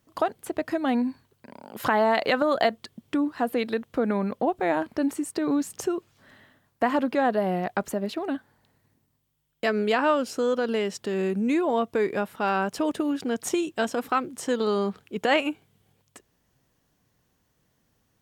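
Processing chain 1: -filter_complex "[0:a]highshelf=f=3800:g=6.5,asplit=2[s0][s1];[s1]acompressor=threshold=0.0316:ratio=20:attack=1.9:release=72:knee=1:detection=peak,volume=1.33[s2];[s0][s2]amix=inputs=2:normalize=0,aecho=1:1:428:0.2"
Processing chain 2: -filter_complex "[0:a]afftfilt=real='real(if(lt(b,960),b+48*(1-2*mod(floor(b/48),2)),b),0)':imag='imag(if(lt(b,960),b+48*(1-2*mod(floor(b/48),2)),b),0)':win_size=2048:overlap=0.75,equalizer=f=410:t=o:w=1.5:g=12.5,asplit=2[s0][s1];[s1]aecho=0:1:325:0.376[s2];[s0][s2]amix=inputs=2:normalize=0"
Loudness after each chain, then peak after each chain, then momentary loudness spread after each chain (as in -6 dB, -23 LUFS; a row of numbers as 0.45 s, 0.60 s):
-23.0 LUFS, -22.5 LUFS; -6.5 dBFS, -5.0 dBFS; 14 LU, 10 LU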